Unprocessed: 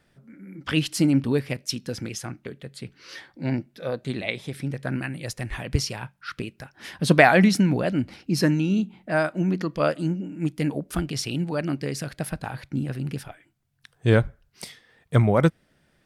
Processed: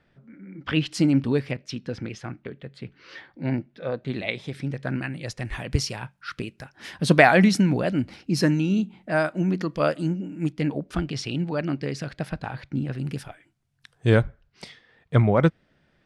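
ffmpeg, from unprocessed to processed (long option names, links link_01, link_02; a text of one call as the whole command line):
ffmpeg -i in.wav -af "asetnsamples=nb_out_samples=441:pad=0,asendcmd='0.91 lowpass f 6100;1.51 lowpass f 3200;4.13 lowpass f 6100;5.45 lowpass f 10000;10.51 lowpass f 4900;12.98 lowpass f 10000;14.23 lowpass f 4400',lowpass=3500" out.wav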